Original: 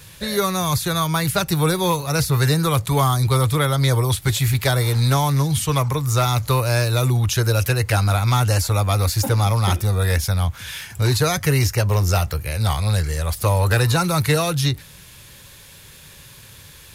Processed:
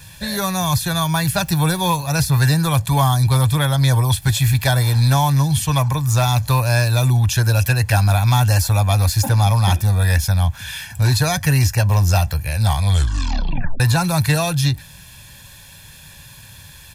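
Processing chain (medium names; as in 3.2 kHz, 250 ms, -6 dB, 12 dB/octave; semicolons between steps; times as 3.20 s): 12.81 s: tape stop 0.99 s; comb 1.2 ms, depth 62%; 1.06–1.91 s: word length cut 8-bit, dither none; 7.91–8.74 s: peaking EQ 14 kHz +7 dB 0.2 oct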